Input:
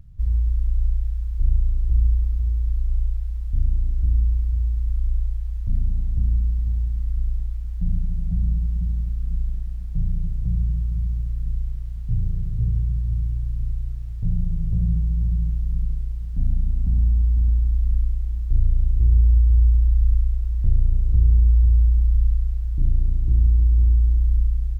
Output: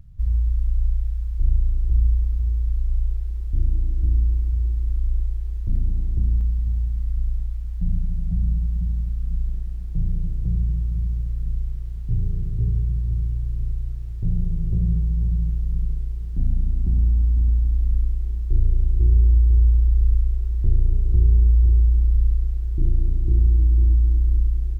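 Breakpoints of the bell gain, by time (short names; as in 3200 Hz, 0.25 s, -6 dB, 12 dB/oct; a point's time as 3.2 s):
bell 360 Hz 0.48 oct
-3.5 dB
from 1 s +4 dB
from 3.11 s +14 dB
from 6.41 s +3 dB
from 9.46 s +13.5 dB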